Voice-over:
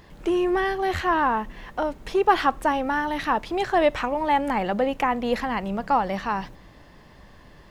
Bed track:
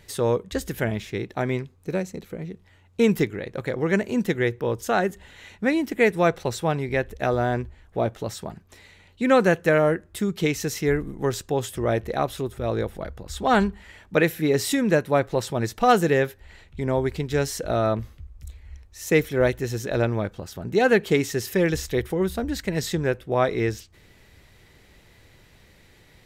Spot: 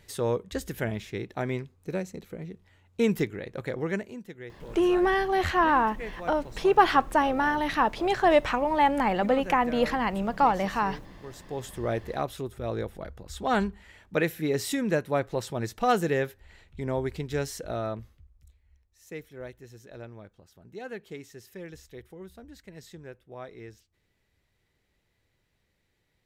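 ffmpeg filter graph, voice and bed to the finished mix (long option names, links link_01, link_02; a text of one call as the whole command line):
ffmpeg -i stem1.wav -i stem2.wav -filter_complex "[0:a]adelay=4500,volume=-0.5dB[link_01];[1:a]volume=8.5dB,afade=type=out:start_time=3.77:duration=0.43:silence=0.188365,afade=type=in:start_time=11.3:duration=0.52:silence=0.211349,afade=type=out:start_time=17.32:duration=1.27:silence=0.188365[link_02];[link_01][link_02]amix=inputs=2:normalize=0" out.wav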